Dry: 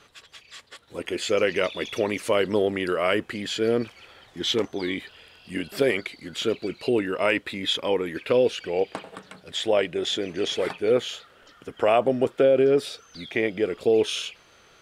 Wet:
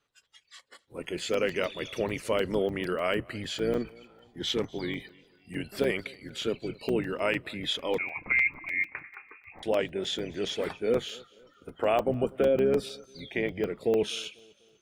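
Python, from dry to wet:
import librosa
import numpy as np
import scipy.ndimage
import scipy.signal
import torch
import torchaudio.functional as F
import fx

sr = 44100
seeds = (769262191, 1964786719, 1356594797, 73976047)

p1 = fx.octave_divider(x, sr, octaves=1, level_db=-5.0)
p2 = fx.noise_reduce_blind(p1, sr, reduce_db=17)
p3 = p2 + fx.echo_feedback(p2, sr, ms=247, feedback_pct=41, wet_db=-24.0, dry=0)
p4 = fx.freq_invert(p3, sr, carrier_hz=2600, at=(7.98, 9.63))
p5 = fx.buffer_crackle(p4, sr, first_s=0.44, period_s=0.15, block=128, kind='zero')
y = F.gain(torch.from_numpy(p5), -5.5).numpy()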